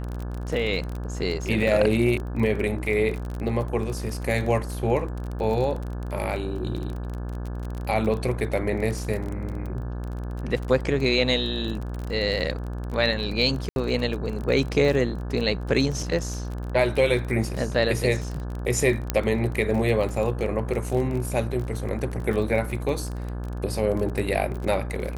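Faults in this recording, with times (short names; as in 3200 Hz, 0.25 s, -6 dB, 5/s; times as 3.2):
buzz 60 Hz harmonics 29 -31 dBFS
crackle 26/s -29 dBFS
13.69–13.76 gap 71 ms
19.1 pop -7 dBFS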